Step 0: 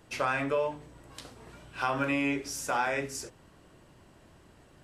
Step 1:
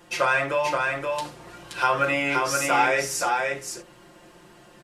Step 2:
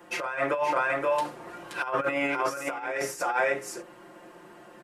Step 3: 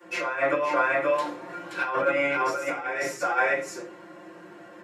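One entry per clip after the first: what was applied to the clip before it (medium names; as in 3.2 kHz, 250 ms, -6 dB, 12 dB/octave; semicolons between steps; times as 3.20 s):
bass shelf 170 Hz -11.5 dB; comb 5.7 ms, depth 95%; delay 525 ms -3.5 dB; trim +5.5 dB
treble shelf 6.4 kHz +11 dB; compressor with a negative ratio -25 dBFS, ratio -0.5; three-band isolator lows -15 dB, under 190 Hz, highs -15 dB, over 2.2 kHz
reverberation RT60 0.40 s, pre-delay 3 ms, DRR -11 dB; trim -8.5 dB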